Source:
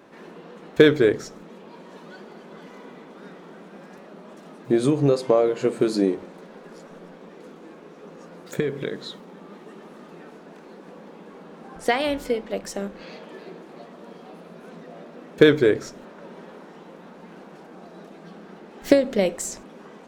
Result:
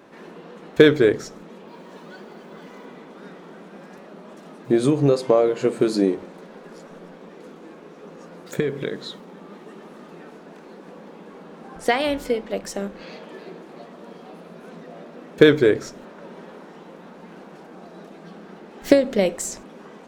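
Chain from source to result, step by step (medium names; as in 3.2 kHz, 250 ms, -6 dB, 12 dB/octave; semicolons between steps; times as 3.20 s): 1.66–2.85 s: added noise violet -79 dBFS; trim +1.5 dB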